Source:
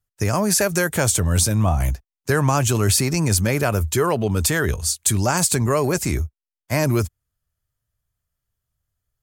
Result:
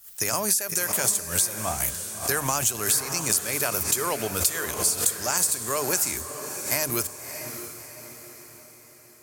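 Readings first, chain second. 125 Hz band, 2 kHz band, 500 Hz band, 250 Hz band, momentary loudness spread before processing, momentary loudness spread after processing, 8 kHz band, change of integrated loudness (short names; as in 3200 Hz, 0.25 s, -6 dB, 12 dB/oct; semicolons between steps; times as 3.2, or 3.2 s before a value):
-18.0 dB, -5.5 dB, -9.0 dB, -13.5 dB, 6 LU, 12 LU, 0.0 dB, -4.0 dB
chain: RIAA curve recording; de-hum 51.1 Hz, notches 6; in parallel at -4.5 dB: sample gate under -24.5 dBFS; on the sum: compressor 10:1, threshold -14 dBFS, peak gain reduction 16 dB; on a send: diffused feedback echo 0.628 s, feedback 48%, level -9 dB; on the sum: backwards sustainer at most 140 dB/s; gain -6.5 dB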